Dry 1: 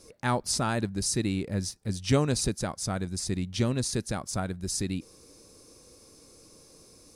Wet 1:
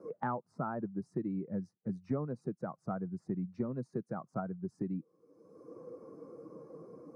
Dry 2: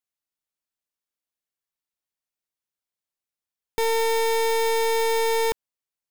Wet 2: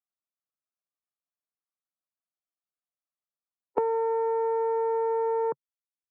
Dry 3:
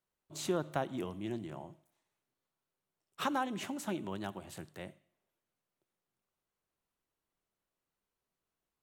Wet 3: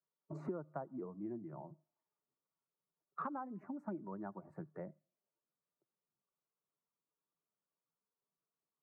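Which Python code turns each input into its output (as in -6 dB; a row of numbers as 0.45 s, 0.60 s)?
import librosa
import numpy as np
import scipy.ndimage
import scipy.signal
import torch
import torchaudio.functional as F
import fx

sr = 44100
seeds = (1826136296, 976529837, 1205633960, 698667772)

y = fx.bin_expand(x, sr, power=1.5)
y = scipy.signal.sosfilt(scipy.signal.ellip(3, 1.0, 40, [140.0, 1300.0], 'bandpass', fs=sr, output='sos'), y)
y = fx.band_squash(y, sr, depth_pct=100)
y = y * 10.0 ** (-3.0 / 20.0)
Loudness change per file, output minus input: -10.0 LU, -4.5 LU, -7.5 LU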